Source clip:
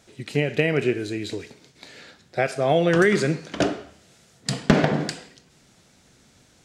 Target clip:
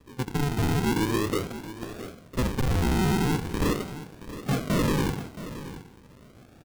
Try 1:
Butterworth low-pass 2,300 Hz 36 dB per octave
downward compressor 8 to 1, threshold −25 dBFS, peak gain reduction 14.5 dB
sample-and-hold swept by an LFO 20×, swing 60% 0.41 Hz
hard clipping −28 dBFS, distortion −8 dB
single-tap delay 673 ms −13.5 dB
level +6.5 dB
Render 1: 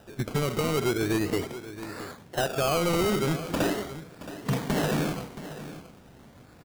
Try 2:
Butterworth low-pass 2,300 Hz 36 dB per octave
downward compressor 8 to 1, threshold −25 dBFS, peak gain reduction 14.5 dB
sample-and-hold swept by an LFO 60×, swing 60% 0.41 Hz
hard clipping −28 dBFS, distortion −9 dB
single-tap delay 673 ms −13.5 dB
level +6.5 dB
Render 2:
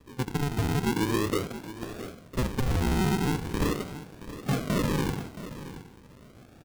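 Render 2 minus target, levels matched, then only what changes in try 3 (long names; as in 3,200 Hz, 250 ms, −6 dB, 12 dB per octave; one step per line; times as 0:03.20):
downward compressor: peak gain reduction +7 dB
change: downward compressor 8 to 1, threshold −17 dBFS, peak gain reduction 7.5 dB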